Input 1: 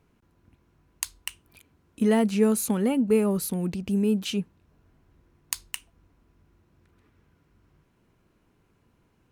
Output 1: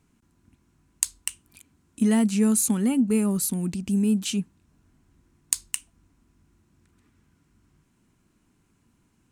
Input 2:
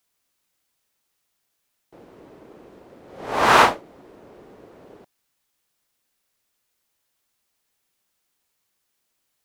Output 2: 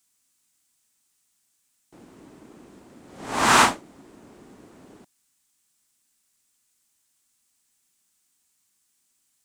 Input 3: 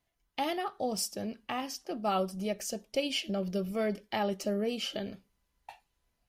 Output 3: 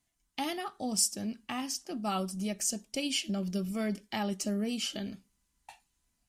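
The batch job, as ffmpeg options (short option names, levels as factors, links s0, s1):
-filter_complex "[0:a]equalizer=f=250:t=o:w=1:g=6,equalizer=f=500:t=o:w=1:g=-8,equalizer=f=8000:t=o:w=1:g=12,asplit=2[s0][s1];[s1]asoftclip=type=tanh:threshold=0.501,volume=0.596[s2];[s0][s2]amix=inputs=2:normalize=0,volume=0.531"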